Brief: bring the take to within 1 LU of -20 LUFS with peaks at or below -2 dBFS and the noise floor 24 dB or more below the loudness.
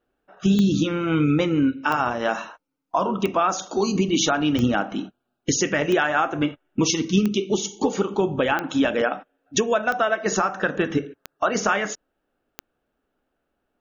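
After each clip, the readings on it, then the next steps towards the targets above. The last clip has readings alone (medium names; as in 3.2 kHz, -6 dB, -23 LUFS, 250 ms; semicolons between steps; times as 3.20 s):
clicks found 10; loudness -22.5 LUFS; peak level -7.5 dBFS; loudness target -20.0 LUFS
-> de-click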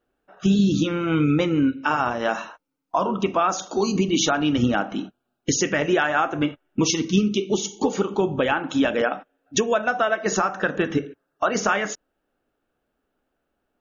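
clicks found 0; loudness -22.5 LUFS; peak level -7.5 dBFS; loudness target -20.0 LUFS
-> trim +2.5 dB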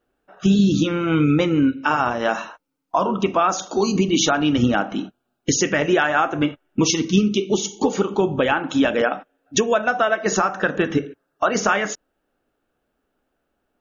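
loudness -20.0 LUFS; peak level -5.0 dBFS; noise floor -74 dBFS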